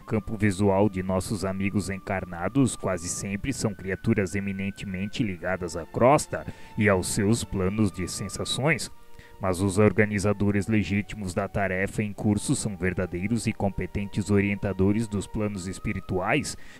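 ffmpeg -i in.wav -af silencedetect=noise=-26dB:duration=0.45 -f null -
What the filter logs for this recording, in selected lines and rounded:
silence_start: 8.86
silence_end: 9.43 | silence_duration: 0.57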